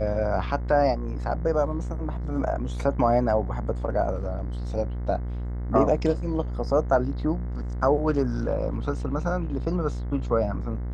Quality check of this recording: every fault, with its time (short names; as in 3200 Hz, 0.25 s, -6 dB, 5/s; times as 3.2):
buzz 60 Hz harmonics 36 -30 dBFS